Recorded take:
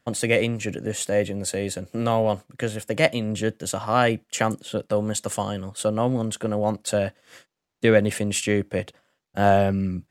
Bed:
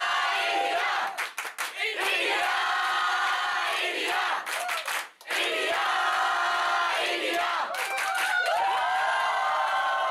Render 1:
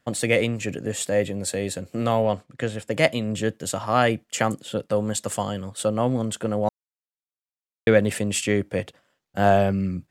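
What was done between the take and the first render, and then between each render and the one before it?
2.26–2.91 air absorption 50 m; 6.69–7.87 mute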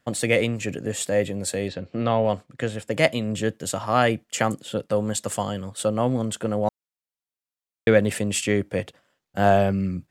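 1.68–2.25 LPF 4400 Hz 24 dB/oct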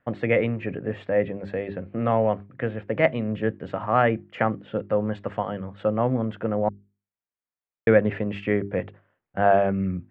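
LPF 2200 Hz 24 dB/oct; notches 50/100/150/200/250/300/350/400 Hz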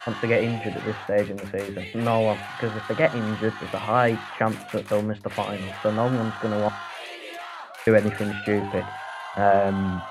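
add bed -10 dB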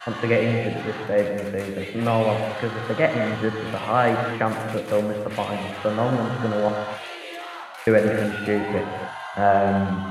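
non-linear reverb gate 0.3 s flat, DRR 4 dB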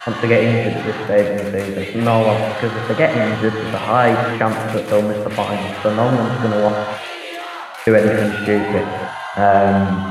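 gain +6.5 dB; limiter -2 dBFS, peak gain reduction 2.5 dB

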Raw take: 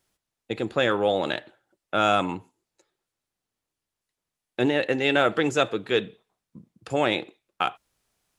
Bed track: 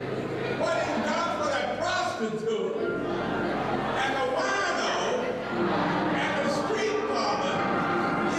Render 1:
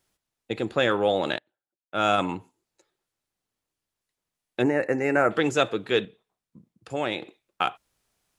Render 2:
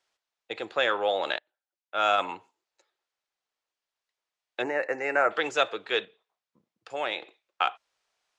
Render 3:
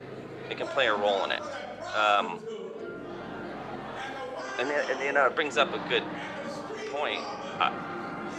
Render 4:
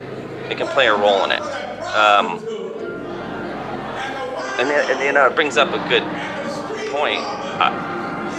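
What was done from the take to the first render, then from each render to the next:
1.38–2.18 upward expander 2.5:1, over -36 dBFS; 4.62–5.31 Butterworth band-stop 3400 Hz, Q 1.1; 6.05–7.22 gain -5 dB
three-band isolator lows -21 dB, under 470 Hz, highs -24 dB, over 7000 Hz
add bed track -10 dB
gain +11 dB; limiter -2 dBFS, peak gain reduction 3 dB

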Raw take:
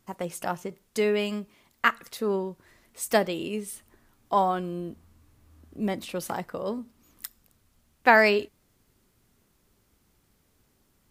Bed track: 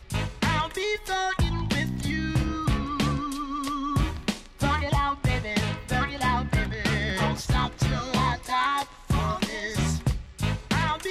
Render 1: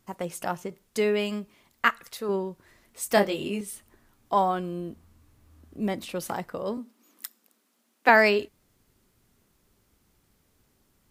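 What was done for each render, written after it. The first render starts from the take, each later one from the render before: 1.89–2.29 bell 250 Hz -6.5 dB 1.9 oct; 3.15–3.61 doubler 20 ms -3 dB; 6.77–8.09 steep high-pass 210 Hz 48 dB/oct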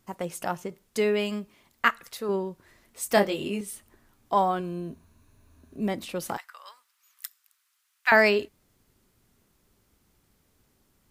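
4.59–5.81 ripple EQ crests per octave 1.5, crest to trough 8 dB; 6.37–8.12 HPF 1200 Hz 24 dB/oct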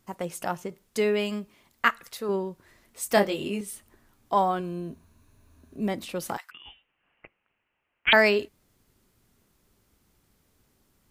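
6.51–8.13 inverted band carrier 4000 Hz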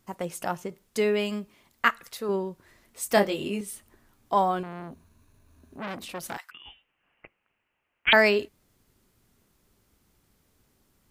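4.63–6.38 core saturation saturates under 2300 Hz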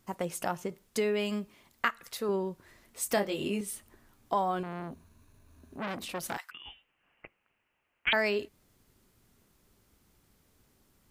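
compressor 2.5:1, threshold -28 dBFS, peak gain reduction 9.5 dB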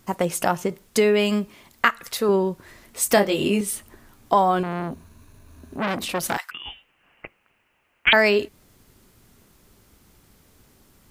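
gain +11 dB; limiter -1 dBFS, peak gain reduction 1 dB

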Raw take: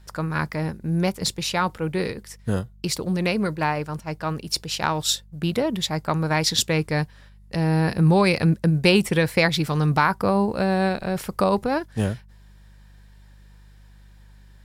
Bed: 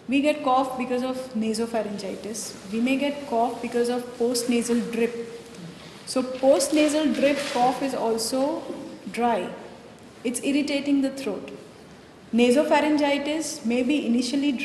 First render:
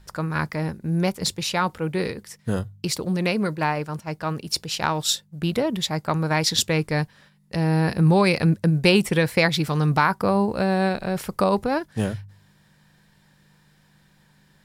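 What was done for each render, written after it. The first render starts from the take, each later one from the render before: de-hum 50 Hz, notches 2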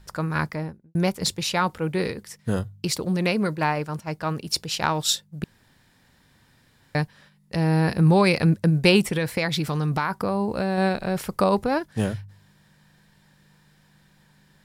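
0.4–0.95 studio fade out; 5.44–6.95 room tone; 9.06–10.78 compressor 3:1, threshold -21 dBFS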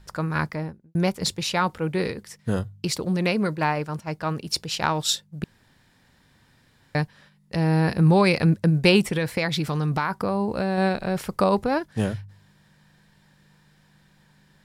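high shelf 10000 Hz -5.5 dB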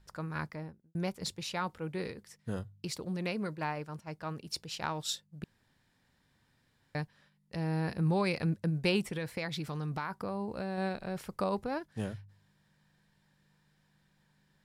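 gain -12 dB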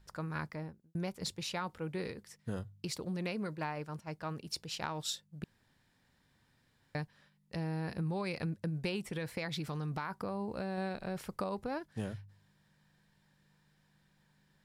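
compressor, threshold -33 dBFS, peak gain reduction 8.5 dB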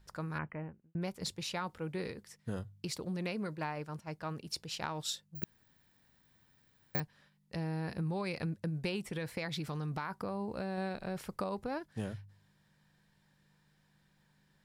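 0.38–1.02 brick-wall FIR low-pass 3100 Hz; 5.35–7 careless resampling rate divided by 2×, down none, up zero stuff

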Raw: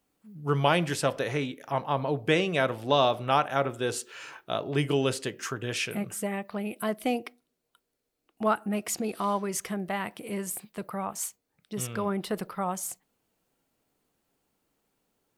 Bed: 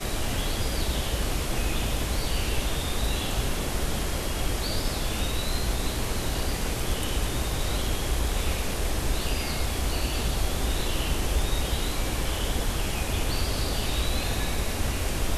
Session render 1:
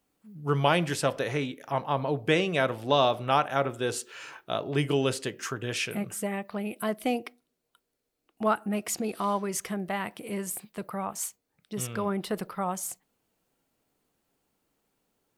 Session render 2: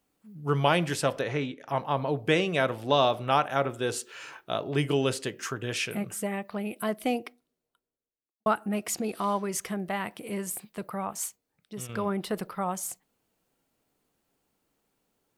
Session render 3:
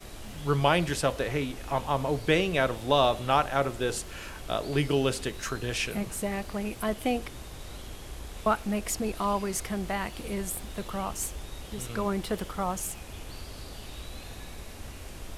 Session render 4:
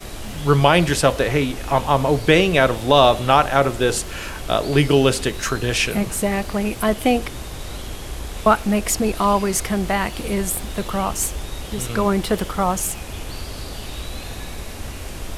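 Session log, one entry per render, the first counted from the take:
nothing audible
1.21–1.68 air absorption 82 m; 7.12–8.46 studio fade out; 11.25–11.89 fade out, to -6.5 dB
add bed -14.5 dB
gain +10.5 dB; limiter -1 dBFS, peak gain reduction 3 dB

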